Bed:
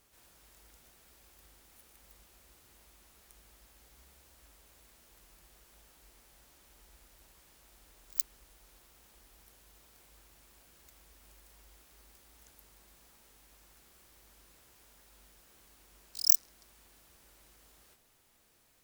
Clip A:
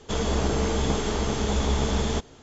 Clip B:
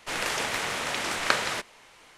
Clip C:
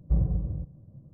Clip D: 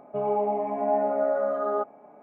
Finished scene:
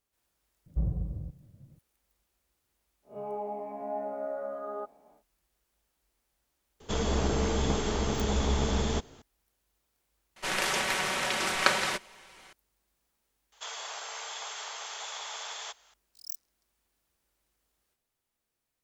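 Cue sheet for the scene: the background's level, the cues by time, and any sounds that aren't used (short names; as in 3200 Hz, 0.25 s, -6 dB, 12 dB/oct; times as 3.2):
bed -16.5 dB
0.66 add C -5.5 dB
3.02 add D -11 dB, fades 0.10 s + spectral swells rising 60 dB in 0.35 s
6.8 add A -3.5 dB
10.36 add B -1 dB + comb 5.3 ms, depth 57%
13.52 add A -5 dB + Bessel high-pass 1100 Hz, order 6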